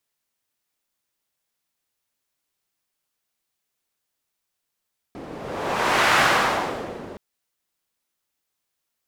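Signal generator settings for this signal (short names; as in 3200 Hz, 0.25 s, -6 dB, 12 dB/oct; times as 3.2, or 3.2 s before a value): wind-like swept noise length 2.02 s, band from 360 Hz, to 1400 Hz, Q 1, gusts 1, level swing 19.5 dB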